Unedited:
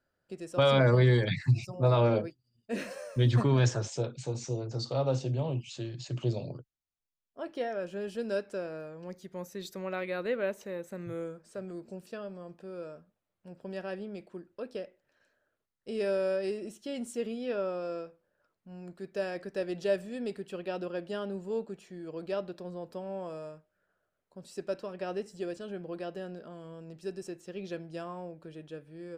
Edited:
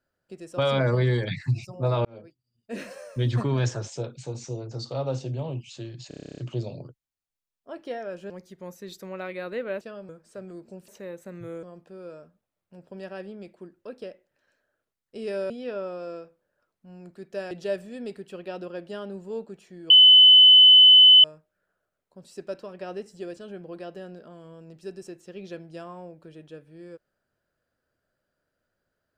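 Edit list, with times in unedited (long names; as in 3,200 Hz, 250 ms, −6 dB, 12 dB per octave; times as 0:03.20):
0:02.05–0:02.80: fade in
0:06.08: stutter 0.03 s, 11 plays
0:08.00–0:09.03: remove
0:10.54–0:11.29: swap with 0:12.08–0:12.36
0:16.23–0:17.32: remove
0:19.33–0:19.71: remove
0:22.10–0:23.44: beep over 3,020 Hz −9 dBFS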